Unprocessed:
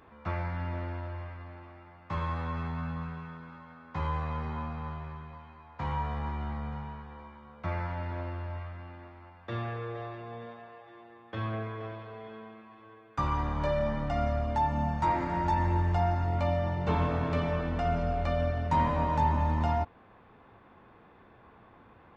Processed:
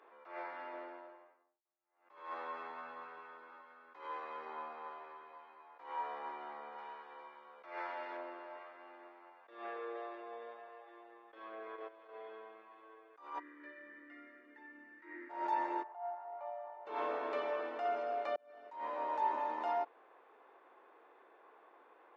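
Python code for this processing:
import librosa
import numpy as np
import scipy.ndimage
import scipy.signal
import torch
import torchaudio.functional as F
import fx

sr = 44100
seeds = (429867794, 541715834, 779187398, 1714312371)

y = fx.studio_fade_out(x, sr, start_s=0.62, length_s=1.03)
y = fx.peak_eq(y, sr, hz=750.0, db=-4.5, octaves=0.96, at=(3.61, 4.46))
y = fx.high_shelf(y, sr, hz=2100.0, db=7.5, at=(6.78, 8.17))
y = fx.level_steps(y, sr, step_db=13, at=(11.34, 12.09))
y = fx.double_bandpass(y, sr, hz=760.0, octaves=2.6, at=(13.38, 15.29), fade=0.02)
y = fx.ladder_bandpass(y, sr, hz=880.0, resonance_pct=50, at=(15.82, 16.85), fade=0.02)
y = fx.edit(y, sr, fx.fade_in_span(start_s=18.36, length_s=0.99), tone=tone)
y = scipy.signal.sosfilt(scipy.signal.butter(6, 350.0, 'highpass', fs=sr, output='sos'), y)
y = fx.high_shelf(y, sr, hz=4400.0, db=-11.5)
y = fx.attack_slew(y, sr, db_per_s=110.0)
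y = y * 10.0 ** (-3.5 / 20.0)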